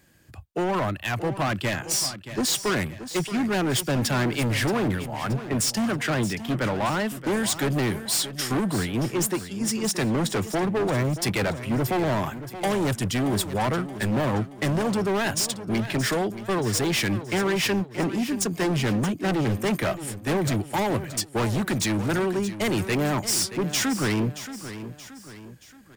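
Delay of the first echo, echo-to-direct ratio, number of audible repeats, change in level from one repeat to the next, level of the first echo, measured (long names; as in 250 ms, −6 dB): 626 ms, −11.5 dB, 3, −7.0 dB, −12.5 dB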